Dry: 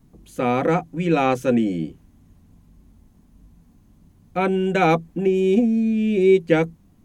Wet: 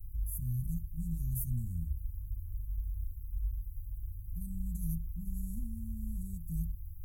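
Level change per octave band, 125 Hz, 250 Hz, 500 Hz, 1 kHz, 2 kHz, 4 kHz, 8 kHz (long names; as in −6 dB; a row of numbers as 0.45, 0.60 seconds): −7.5 dB, −23.0 dB, below −40 dB, below −40 dB, below −40 dB, below −40 dB, can't be measured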